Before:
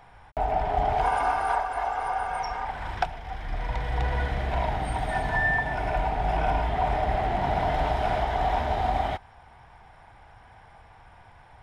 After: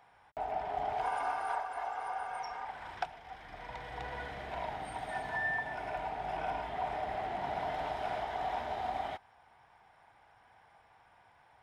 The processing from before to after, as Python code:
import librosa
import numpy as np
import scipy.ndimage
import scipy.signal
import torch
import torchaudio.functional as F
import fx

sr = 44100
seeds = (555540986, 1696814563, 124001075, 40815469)

y = fx.highpass(x, sr, hz=320.0, slope=6)
y = y * librosa.db_to_amplitude(-9.0)